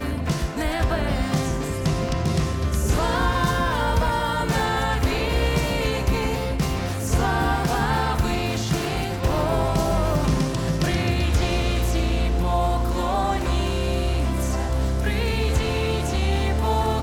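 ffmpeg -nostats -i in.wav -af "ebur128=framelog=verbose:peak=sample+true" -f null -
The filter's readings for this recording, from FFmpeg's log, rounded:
Integrated loudness:
  I:         -23.2 LUFS
  Threshold: -33.2 LUFS
Loudness range:
  LRA:         1.2 LU
  Threshold: -43.1 LUFS
  LRA low:   -23.7 LUFS
  LRA high:  -22.4 LUFS
Sample peak:
  Peak:      -10.4 dBFS
True peak:
  Peak:      -10.3 dBFS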